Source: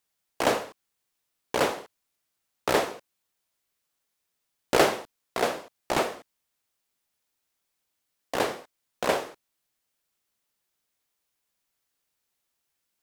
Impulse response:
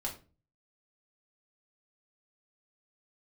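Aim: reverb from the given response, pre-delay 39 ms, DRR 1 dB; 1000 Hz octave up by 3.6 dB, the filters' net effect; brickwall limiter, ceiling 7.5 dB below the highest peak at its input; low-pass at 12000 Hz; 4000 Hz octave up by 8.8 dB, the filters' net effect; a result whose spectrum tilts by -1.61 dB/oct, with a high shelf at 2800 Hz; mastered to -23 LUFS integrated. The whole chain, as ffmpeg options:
-filter_complex "[0:a]lowpass=12k,equalizer=f=1k:t=o:g=3.5,highshelf=f=2.8k:g=7.5,equalizer=f=4k:t=o:g=5,alimiter=limit=-9dB:level=0:latency=1,asplit=2[a][b];[1:a]atrim=start_sample=2205,adelay=39[c];[b][c]afir=irnorm=-1:irlink=0,volume=-2.5dB[d];[a][d]amix=inputs=2:normalize=0,volume=1dB"

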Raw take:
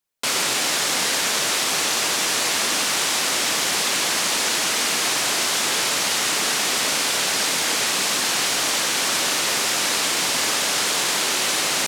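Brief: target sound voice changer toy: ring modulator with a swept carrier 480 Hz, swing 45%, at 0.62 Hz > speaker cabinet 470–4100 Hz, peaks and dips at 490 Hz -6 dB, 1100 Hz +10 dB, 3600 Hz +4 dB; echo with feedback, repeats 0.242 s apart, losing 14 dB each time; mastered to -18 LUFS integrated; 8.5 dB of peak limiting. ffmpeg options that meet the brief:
-af "alimiter=limit=-16.5dB:level=0:latency=1,aecho=1:1:242|484:0.2|0.0399,aeval=exprs='val(0)*sin(2*PI*480*n/s+480*0.45/0.62*sin(2*PI*0.62*n/s))':c=same,highpass=470,equalizer=f=490:t=q:w=4:g=-6,equalizer=f=1.1k:t=q:w=4:g=10,equalizer=f=3.6k:t=q:w=4:g=4,lowpass=f=4.1k:w=0.5412,lowpass=f=4.1k:w=1.3066,volume=10dB"

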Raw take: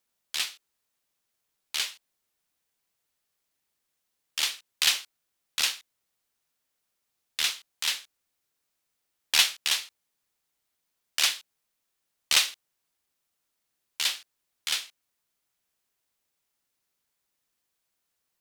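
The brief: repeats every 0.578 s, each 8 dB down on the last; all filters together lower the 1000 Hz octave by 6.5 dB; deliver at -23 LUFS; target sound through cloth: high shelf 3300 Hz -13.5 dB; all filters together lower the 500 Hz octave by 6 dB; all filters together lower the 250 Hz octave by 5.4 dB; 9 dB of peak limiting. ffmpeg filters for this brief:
-af "equalizer=f=250:t=o:g=-5.5,equalizer=f=500:t=o:g=-4,equalizer=f=1k:t=o:g=-5.5,alimiter=limit=-15.5dB:level=0:latency=1,highshelf=f=3.3k:g=-13.5,aecho=1:1:578|1156|1734|2312|2890:0.398|0.159|0.0637|0.0255|0.0102,volume=17dB"

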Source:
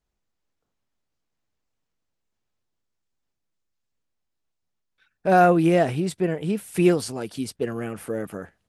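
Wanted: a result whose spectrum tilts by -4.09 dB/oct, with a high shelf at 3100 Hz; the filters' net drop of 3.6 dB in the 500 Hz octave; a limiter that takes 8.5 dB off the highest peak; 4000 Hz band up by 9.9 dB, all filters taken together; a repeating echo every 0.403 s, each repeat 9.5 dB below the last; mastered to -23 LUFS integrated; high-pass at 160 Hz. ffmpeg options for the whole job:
-af "highpass=160,equalizer=f=500:t=o:g=-5.5,highshelf=f=3.1k:g=7.5,equalizer=f=4k:t=o:g=7,alimiter=limit=-13dB:level=0:latency=1,aecho=1:1:403|806|1209|1612:0.335|0.111|0.0365|0.012,volume=3dB"

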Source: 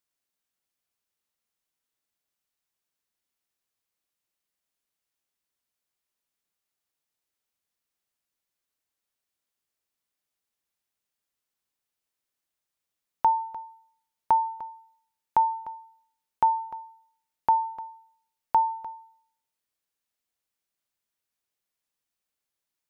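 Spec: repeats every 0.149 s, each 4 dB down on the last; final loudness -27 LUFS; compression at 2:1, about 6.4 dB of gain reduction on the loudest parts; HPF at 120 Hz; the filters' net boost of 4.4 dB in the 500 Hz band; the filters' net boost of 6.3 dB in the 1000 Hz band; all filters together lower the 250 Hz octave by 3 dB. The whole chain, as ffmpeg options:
-af "highpass=120,equalizer=f=250:t=o:g=-6,equalizer=f=500:t=o:g=4.5,equalizer=f=1k:t=o:g=6,acompressor=threshold=-22dB:ratio=2,aecho=1:1:149|298|447|596|745|894|1043|1192|1341:0.631|0.398|0.25|0.158|0.0994|0.0626|0.0394|0.0249|0.0157,volume=-1dB"

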